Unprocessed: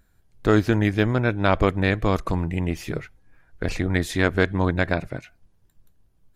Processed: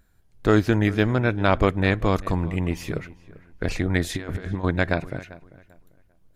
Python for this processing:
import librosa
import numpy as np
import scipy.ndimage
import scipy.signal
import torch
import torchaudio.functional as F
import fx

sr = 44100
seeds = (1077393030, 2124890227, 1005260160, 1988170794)

y = fx.over_compress(x, sr, threshold_db=-26.0, ratio=-0.5, at=(4.14, 4.63), fade=0.02)
y = fx.echo_filtered(y, sr, ms=394, feedback_pct=26, hz=2900.0, wet_db=-19)